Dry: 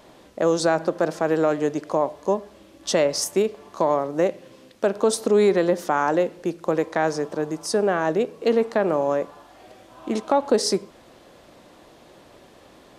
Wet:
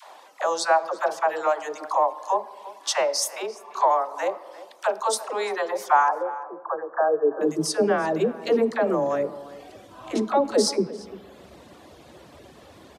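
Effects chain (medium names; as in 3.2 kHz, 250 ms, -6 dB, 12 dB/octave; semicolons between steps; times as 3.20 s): reverb removal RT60 0.95 s; in parallel at 0 dB: compression, threshold -30 dBFS, peak gain reduction 15 dB; 6.08–7.41 s: on the sum: rippled Chebyshev low-pass 1.7 kHz, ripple 6 dB; phase dispersion lows, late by 93 ms, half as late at 440 Hz; high-pass sweep 850 Hz -> 72 Hz, 6.88–8.05 s; echo from a far wall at 59 m, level -17 dB; on a send at -15 dB: reverberation RT60 1.9 s, pre-delay 3 ms; on the sum: trim -2.5 dB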